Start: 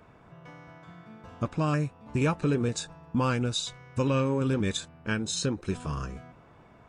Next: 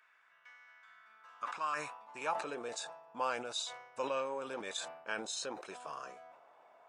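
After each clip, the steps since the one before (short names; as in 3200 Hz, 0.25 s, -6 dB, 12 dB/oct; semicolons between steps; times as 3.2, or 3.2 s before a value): high-pass sweep 1700 Hz -> 680 Hz, 0.79–2.56; sustainer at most 73 dB/s; gain -8.5 dB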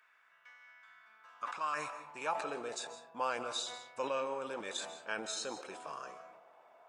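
digital reverb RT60 0.71 s, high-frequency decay 0.4×, pre-delay 0.11 s, DRR 10.5 dB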